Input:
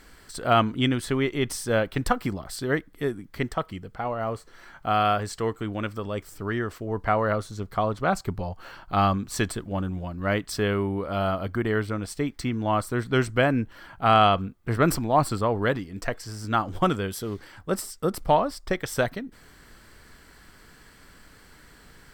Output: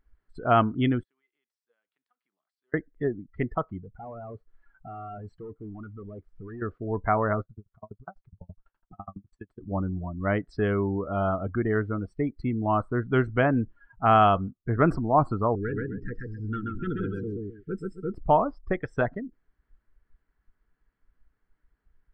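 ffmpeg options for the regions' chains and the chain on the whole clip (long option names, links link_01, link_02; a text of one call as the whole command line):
ffmpeg -i in.wav -filter_complex "[0:a]asettb=1/sr,asplit=3[link_01][link_02][link_03];[link_01]atrim=end=1.034[link_04];[link_02]atrim=start=1.03:end=2.74,asetpts=PTS-STARTPTS,afade=type=in:duration=0.004:curve=qsin,afade=type=out:start_time=1.706:duration=0.004:curve=qsin,aderivative,acompressor=threshold=-46dB:ratio=5:attack=3.2:release=140:knee=1:detection=peak,highpass=frequency=160:width=0.5412,highpass=frequency=160:width=1.3066[link_05];[link_03]atrim=start=2.736[link_06];[link_04][link_05]acrossfade=duration=0.004:curve1=hsin:curve2=qsin[link_07];[link_07][link_06]acrossfade=duration=0.004:curve1=qsin:curve2=hsin,asettb=1/sr,asplit=3[link_08][link_09][link_10];[link_08]atrim=end=3.804[link_11];[link_09]atrim=start=3.8:end=6.62,asetpts=PTS-STARTPTS,afade=type=in:duration=0.004:curve=qsin,afade=type=out:start_time=2.816:duration=0.004:curve=qsin,acompressor=threshold=-34dB:ratio=1.5:attack=3.2:release=140:knee=1:detection=peak,volume=35.5dB,asoftclip=hard,volume=-35.5dB[link_12];[link_10]atrim=start=6.616[link_13];[link_11][link_12]acrossfade=duration=0.004:curve1=hsin:curve2=qsin[link_14];[link_14][link_13]acrossfade=duration=0.004:curve1=qsin:curve2=hsin,asettb=1/sr,asplit=3[link_15][link_16][link_17];[link_15]atrim=end=7.414[link_18];[link_16]atrim=start=7.41:end=9.61,asetpts=PTS-STARTPTS,afade=type=in:duration=0.004:curve=qsin,afade=type=out:start_time=2.196:duration=0.004:curve=qsin,acompressor=threshold=-29dB:ratio=4:attack=3.2:release=140:knee=1:detection=peak,aeval=exprs='val(0)*pow(10,-35*if(lt(mod(12*n/s,1),2*abs(12)/1000),1-mod(12*n/s,1)/(2*abs(12)/1000),(mod(12*n/s,1)-2*abs(12)/1000)/(1-2*abs(12)/1000))/20)':channel_layout=same[link_19];[link_17]atrim=start=9.606[link_20];[link_18][link_19]acrossfade=duration=0.004:curve1=hsin:curve2=qsin[link_21];[link_21][link_20]acrossfade=duration=0.004:curve1=qsin:curve2=hsin,asettb=1/sr,asplit=3[link_22][link_23][link_24];[link_22]atrim=end=15.554[link_25];[link_23]atrim=start=15.55:end=18.14,asetpts=PTS-STARTPTS,afade=type=in:duration=0.004:curve=qsin,afade=type=out:start_time=2.586:duration=0.004:curve=qsin,aecho=1:1:131|262|393|524:0.708|0.205|0.0595|0.0173,atrim=end_sample=114219,aeval=exprs='(tanh(15.8*val(0)+0.25)-tanh(0.25))/15.8':channel_layout=same,asuperstop=centerf=810:order=20:qfactor=0.97[link_26];[link_24]atrim=start=18.136[link_27];[link_25][link_26]acrossfade=duration=0.004:curve1=hsin:curve2=qsin[link_28];[link_28][link_27]acrossfade=duration=0.004:curve1=qsin:curve2=hsin,bandreject=frequency=530:width=12,afftdn=noise_reduction=27:noise_floor=-33,lowpass=1900" out.wav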